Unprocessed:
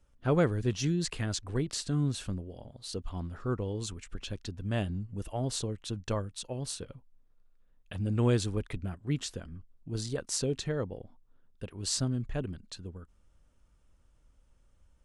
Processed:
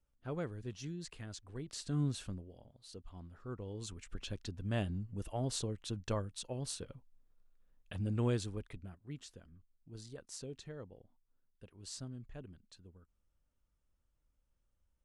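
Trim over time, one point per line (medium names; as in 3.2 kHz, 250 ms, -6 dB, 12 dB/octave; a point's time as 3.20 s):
1.57 s -14 dB
2.01 s -4 dB
2.79 s -13.5 dB
3.42 s -13.5 dB
4.12 s -4 dB
7.99 s -4 dB
9.11 s -15 dB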